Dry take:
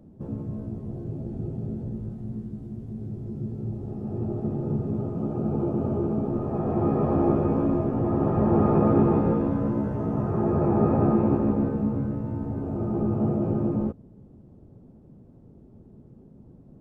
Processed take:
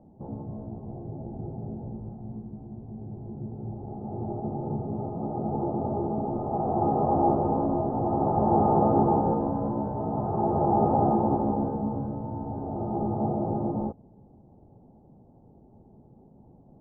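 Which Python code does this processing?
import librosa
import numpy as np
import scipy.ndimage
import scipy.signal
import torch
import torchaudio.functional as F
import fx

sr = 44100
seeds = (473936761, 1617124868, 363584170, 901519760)

y = fx.lowpass_res(x, sr, hz=820.0, q=5.5)
y = y * librosa.db_to_amplitude(-5.0)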